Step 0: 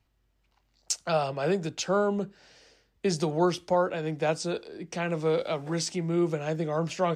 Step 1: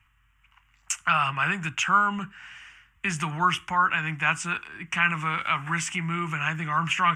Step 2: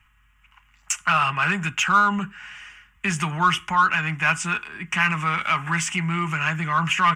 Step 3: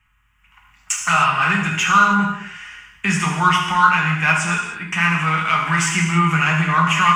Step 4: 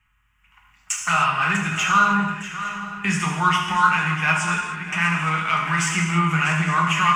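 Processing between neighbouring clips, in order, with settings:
in parallel at 0 dB: peak limiter -24 dBFS, peak gain reduction 10.5 dB; on the sum: FFT filter 120 Hz 0 dB, 300 Hz -12 dB, 510 Hz -27 dB, 1.1 kHz +10 dB, 2.9 kHz +10 dB, 4.2 kHz -19 dB, 7.2 kHz +1 dB, 12 kHz -2 dB
comb 4.8 ms, depth 35%; in parallel at -4 dB: saturation -21.5 dBFS, distortion -9 dB
level rider; gated-style reverb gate 340 ms falling, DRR -1 dB; trim -5 dB
shuffle delay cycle 860 ms, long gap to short 3:1, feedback 32%, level -13 dB; trim -3.5 dB

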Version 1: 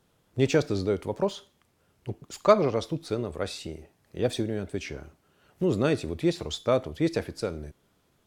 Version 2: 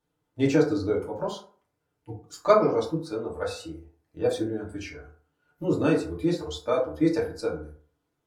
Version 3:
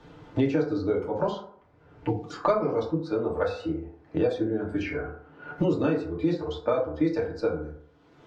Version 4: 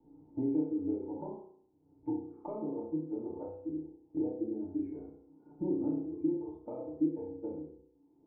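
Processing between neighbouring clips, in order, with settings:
spectral noise reduction 12 dB; in parallel at -3 dB: level held to a coarse grid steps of 14 dB; on the sum: FDN reverb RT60 0.47 s, low-frequency decay 0.85×, high-frequency decay 0.4×, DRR -4.5 dB; trim -8 dB
distance through air 180 m; three bands compressed up and down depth 100%
cascade formant filter u; dynamic bell 810 Hz, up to +4 dB, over -51 dBFS, Q 1.4; flutter echo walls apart 5.5 m, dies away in 0.56 s; trim -5 dB

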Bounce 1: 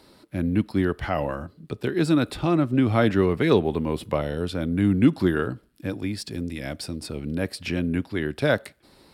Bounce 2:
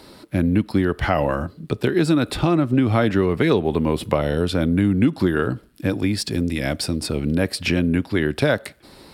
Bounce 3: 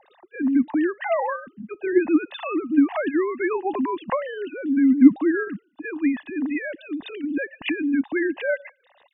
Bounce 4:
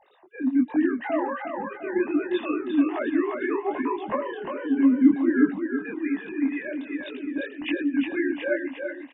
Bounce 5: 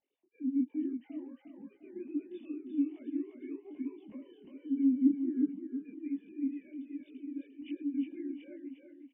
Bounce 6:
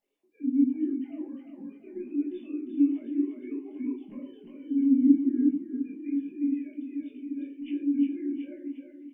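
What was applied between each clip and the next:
compression 4:1, threshold -24 dBFS, peak gain reduction 11 dB; trim +9 dB
formants replaced by sine waves; comb 1.1 ms, depth 64%; trim -1 dB
on a send: feedback delay 353 ms, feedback 39%, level -5 dB; on the sum: detune thickener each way 44 cents
cascade formant filter i; trim -8 dB
simulated room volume 220 m³, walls furnished, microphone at 1.3 m; trim +2.5 dB

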